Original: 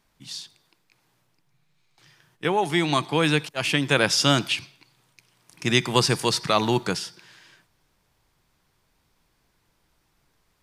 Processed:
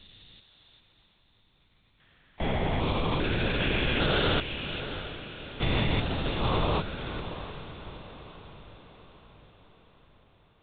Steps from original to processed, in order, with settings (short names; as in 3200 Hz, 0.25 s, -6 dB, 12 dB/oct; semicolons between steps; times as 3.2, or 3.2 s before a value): stepped spectrum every 0.4 s; LPC vocoder at 8 kHz whisper; diffused feedback echo 0.689 s, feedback 51%, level -11 dB